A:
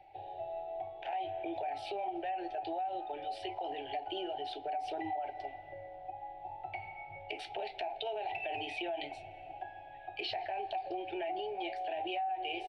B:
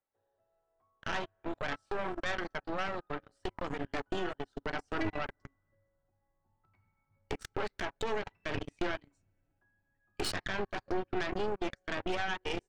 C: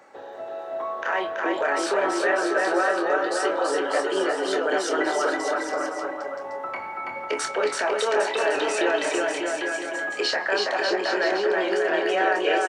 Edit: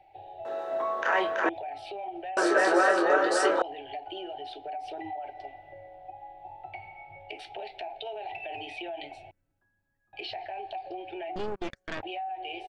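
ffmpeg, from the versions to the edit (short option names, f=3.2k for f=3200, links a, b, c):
-filter_complex "[2:a]asplit=2[a][b];[1:a]asplit=2[c][d];[0:a]asplit=5[e][f][g][h][i];[e]atrim=end=0.452[j];[a]atrim=start=0.448:end=1.492[k];[f]atrim=start=1.488:end=2.372[l];[b]atrim=start=2.368:end=3.622[m];[g]atrim=start=3.618:end=9.312[n];[c]atrim=start=9.308:end=10.132[o];[h]atrim=start=10.128:end=11.362[p];[d]atrim=start=11.358:end=12.032[q];[i]atrim=start=12.028[r];[j][k]acrossfade=d=0.004:c1=hsin:c2=hsin[s];[s][l]acrossfade=d=0.004:c1=hsin:c2=hsin[t];[t][m]acrossfade=d=0.004:c1=hsin:c2=hsin[u];[u][n]acrossfade=d=0.004:c1=hsin:c2=hsin[v];[v][o]acrossfade=d=0.004:c1=hsin:c2=hsin[w];[w][p]acrossfade=d=0.004:c1=hsin:c2=hsin[x];[x][q]acrossfade=d=0.004:c1=hsin:c2=hsin[y];[y][r]acrossfade=d=0.004:c1=hsin:c2=hsin"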